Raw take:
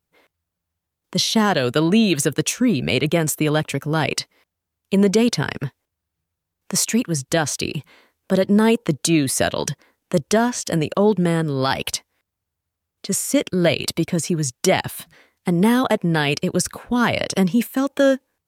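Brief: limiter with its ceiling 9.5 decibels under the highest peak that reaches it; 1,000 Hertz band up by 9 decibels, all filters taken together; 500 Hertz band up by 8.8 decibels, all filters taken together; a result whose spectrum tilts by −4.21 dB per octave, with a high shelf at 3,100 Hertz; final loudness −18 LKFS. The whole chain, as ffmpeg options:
ffmpeg -i in.wav -af "equalizer=frequency=500:width_type=o:gain=8.5,equalizer=frequency=1000:width_type=o:gain=8,highshelf=frequency=3100:gain=4.5,volume=0.5dB,alimiter=limit=-7dB:level=0:latency=1" out.wav

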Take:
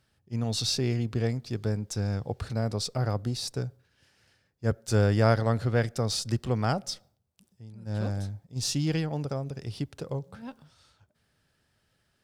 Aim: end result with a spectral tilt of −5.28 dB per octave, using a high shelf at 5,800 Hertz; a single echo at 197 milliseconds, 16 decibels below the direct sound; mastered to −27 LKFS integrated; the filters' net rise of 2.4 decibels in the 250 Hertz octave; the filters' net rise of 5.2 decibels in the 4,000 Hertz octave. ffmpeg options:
ffmpeg -i in.wav -af "equalizer=frequency=250:width_type=o:gain=3,equalizer=frequency=4000:width_type=o:gain=9,highshelf=frequency=5800:gain=-6,aecho=1:1:197:0.158,volume=1dB" out.wav

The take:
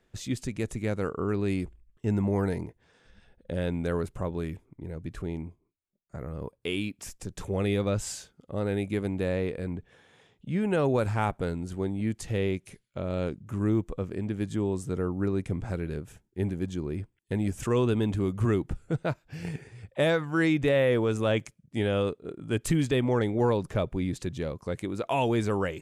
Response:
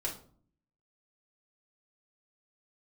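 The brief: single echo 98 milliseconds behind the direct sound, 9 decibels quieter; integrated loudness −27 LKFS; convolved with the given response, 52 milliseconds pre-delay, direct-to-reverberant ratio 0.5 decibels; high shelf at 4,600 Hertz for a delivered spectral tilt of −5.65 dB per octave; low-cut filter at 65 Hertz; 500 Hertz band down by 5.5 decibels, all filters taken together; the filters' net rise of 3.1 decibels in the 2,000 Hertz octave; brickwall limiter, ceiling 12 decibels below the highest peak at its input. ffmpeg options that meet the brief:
-filter_complex "[0:a]highpass=65,equalizer=frequency=500:width_type=o:gain=-7,equalizer=frequency=2000:width_type=o:gain=3.5,highshelf=frequency=4600:gain=4.5,alimiter=level_in=2dB:limit=-24dB:level=0:latency=1,volume=-2dB,aecho=1:1:98:0.355,asplit=2[link_01][link_02];[1:a]atrim=start_sample=2205,adelay=52[link_03];[link_02][link_03]afir=irnorm=-1:irlink=0,volume=-3dB[link_04];[link_01][link_04]amix=inputs=2:normalize=0,volume=6.5dB"

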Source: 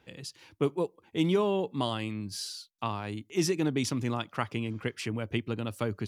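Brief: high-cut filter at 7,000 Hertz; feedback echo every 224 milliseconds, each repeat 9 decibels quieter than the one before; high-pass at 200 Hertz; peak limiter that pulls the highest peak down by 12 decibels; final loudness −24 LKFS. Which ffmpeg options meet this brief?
ffmpeg -i in.wav -af "highpass=200,lowpass=7000,alimiter=level_in=1.5dB:limit=-24dB:level=0:latency=1,volume=-1.5dB,aecho=1:1:224|448|672|896:0.355|0.124|0.0435|0.0152,volume=12.5dB" out.wav

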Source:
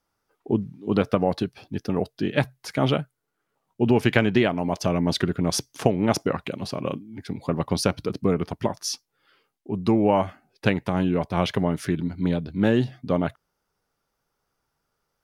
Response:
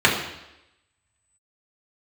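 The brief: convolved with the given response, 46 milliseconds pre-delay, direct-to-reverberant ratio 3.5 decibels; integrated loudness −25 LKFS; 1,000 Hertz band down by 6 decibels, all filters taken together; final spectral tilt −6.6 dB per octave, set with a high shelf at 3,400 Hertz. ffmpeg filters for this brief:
-filter_complex "[0:a]equalizer=frequency=1000:width_type=o:gain=-8,highshelf=frequency=3400:gain=-5.5,asplit=2[link_01][link_02];[1:a]atrim=start_sample=2205,adelay=46[link_03];[link_02][link_03]afir=irnorm=-1:irlink=0,volume=-25.5dB[link_04];[link_01][link_04]amix=inputs=2:normalize=0,volume=-0.5dB"

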